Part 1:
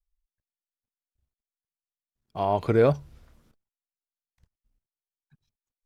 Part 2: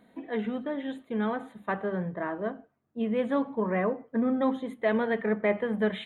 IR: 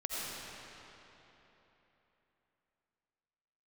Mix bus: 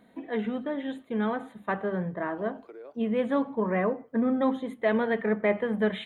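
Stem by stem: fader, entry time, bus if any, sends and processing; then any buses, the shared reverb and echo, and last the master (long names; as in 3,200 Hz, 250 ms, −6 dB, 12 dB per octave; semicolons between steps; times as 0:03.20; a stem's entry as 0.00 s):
−17.5 dB, 0.00 s, no send, Butterworth high-pass 310 Hz; high-shelf EQ 3,300 Hz −11.5 dB; brickwall limiter −20 dBFS, peak gain reduction 9.5 dB
+1.0 dB, 0.00 s, no send, no processing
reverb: not used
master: no processing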